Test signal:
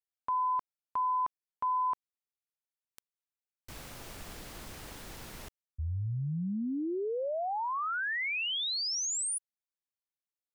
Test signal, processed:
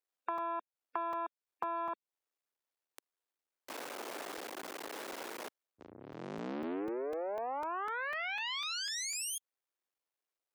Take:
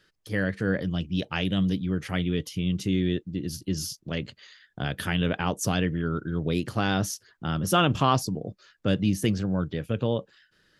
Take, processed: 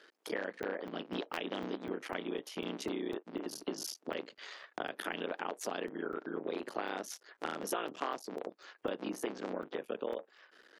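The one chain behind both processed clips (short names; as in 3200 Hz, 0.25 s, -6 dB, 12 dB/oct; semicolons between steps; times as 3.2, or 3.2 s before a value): cycle switcher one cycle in 3, muted; HPF 320 Hz 24 dB/oct; spectral gate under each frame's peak -30 dB strong; high shelf 2200 Hz -9.5 dB; compressor 5:1, threshold -46 dBFS; crackling interface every 0.25 s, samples 128, zero, from 0.38; gain +10 dB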